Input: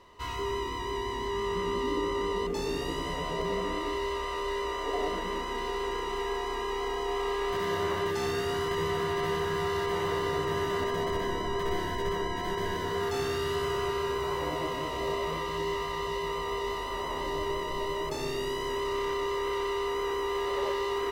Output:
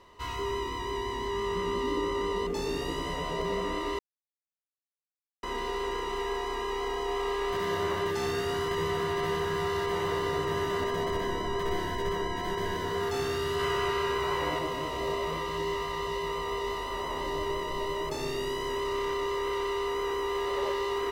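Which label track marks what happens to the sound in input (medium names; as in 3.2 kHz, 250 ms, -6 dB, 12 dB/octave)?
3.990000	5.430000	mute
13.590000	14.590000	peaking EQ 2 kHz +5 dB 2.2 oct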